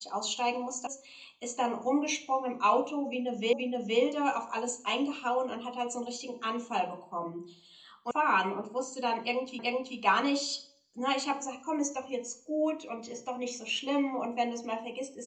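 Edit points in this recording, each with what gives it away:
0.87 sound cut off
3.53 repeat of the last 0.47 s
8.11 sound cut off
9.59 repeat of the last 0.38 s

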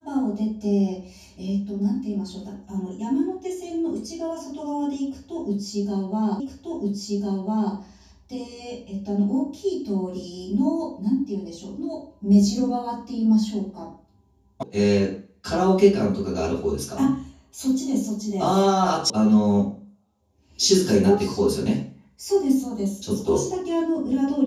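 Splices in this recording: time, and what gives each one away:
6.4 repeat of the last 1.35 s
14.63 sound cut off
19.1 sound cut off

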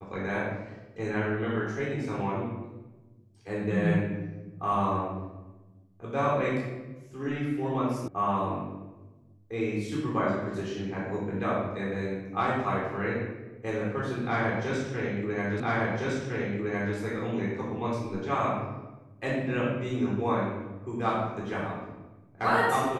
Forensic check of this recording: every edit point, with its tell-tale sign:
8.08 sound cut off
15.6 repeat of the last 1.36 s

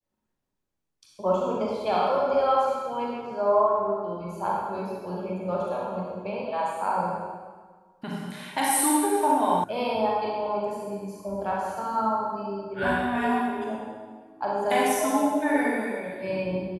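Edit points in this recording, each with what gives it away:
9.64 sound cut off

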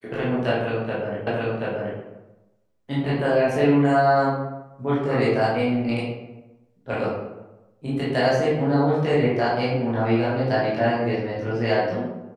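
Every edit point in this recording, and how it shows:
1.27 repeat of the last 0.73 s

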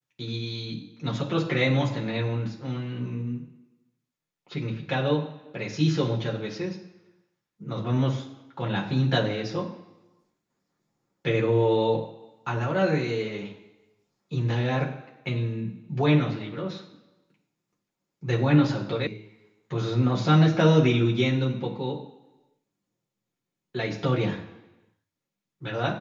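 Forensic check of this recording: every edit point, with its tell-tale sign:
19.07 sound cut off

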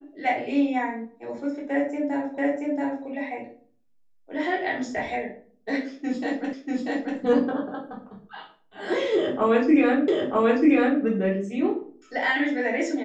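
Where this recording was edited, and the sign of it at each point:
2.38 repeat of the last 0.68 s
6.53 repeat of the last 0.64 s
10.08 repeat of the last 0.94 s

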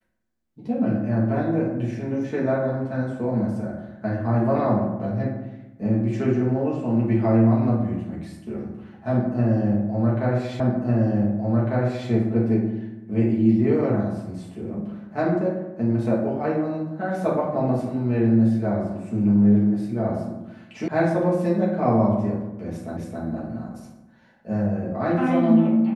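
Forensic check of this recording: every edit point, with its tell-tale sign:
10.6 repeat of the last 1.5 s
20.88 sound cut off
22.97 repeat of the last 0.27 s

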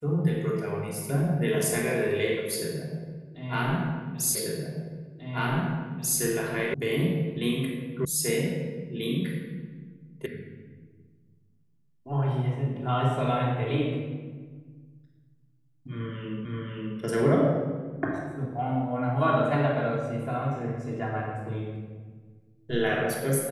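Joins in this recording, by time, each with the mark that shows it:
4.35 repeat of the last 1.84 s
6.74 sound cut off
8.05 sound cut off
10.26 sound cut off
16.45 repeat of the last 0.53 s

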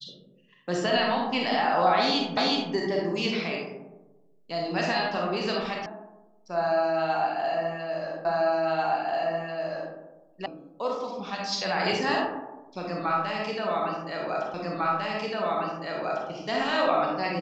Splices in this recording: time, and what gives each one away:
2.37 repeat of the last 0.37 s
5.86 sound cut off
8.25 repeat of the last 1.69 s
10.46 sound cut off
14.54 repeat of the last 1.75 s

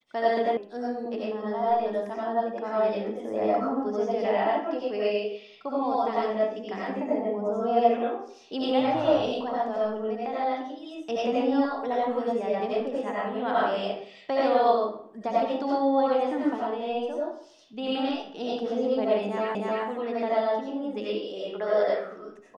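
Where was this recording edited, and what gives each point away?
0.57 sound cut off
19.55 repeat of the last 0.31 s

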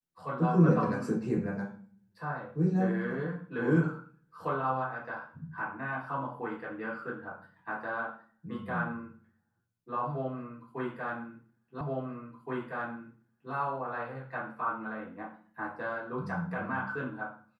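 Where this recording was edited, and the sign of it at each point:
11.81 repeat of the last 1.72 s

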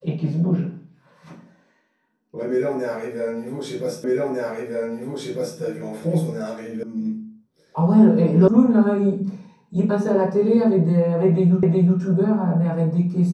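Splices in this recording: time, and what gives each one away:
4.04 repeat of the last 1.55 s
6.83 sound cut off
8.48 sound cut off
11.63 repeat of the last 0.37 s

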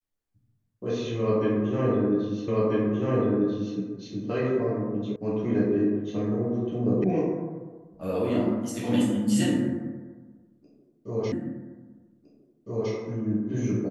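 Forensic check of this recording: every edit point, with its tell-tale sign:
2.48 repeat of the last 1.29 s
5.16 sound cut off
7.04 sound cut off
11.32 repeat of the last 1.61 s

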